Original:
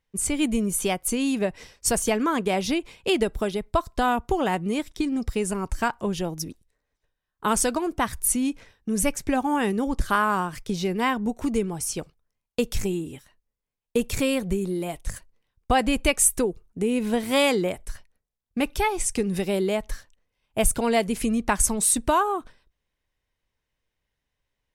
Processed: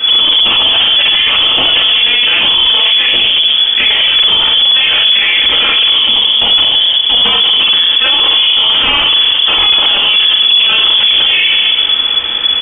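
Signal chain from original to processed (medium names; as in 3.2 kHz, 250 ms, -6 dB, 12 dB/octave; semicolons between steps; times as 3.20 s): spectral levelling over time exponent 0.6; in parallel at +3 dB: compression, threshold -36 dBFS, peak gain reduction 21 dB; on the sum: granular stretch 0.51×, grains 131 ms; on a send: delay 277 ms -22.5 dB; on the sum: simulated room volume 260 m³, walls mixed, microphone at 7.2 m; frequency inversion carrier 3.4 kHz; loudness maximiser +9.5 dB; trim -1 dB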